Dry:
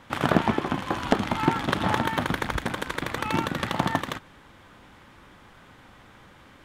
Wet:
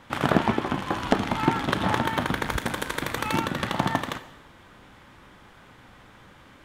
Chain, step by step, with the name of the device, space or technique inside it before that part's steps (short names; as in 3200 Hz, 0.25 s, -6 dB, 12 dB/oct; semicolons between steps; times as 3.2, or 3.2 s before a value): saturated reverb return (on a send at -10.5 dB: reverb RT60 1.0 s, pre-delay 11 ms + soft clip -19 dBFS, distortion -17 dB); 2.47–3.4 on the sum: high shelf 6700 Hz +8 dB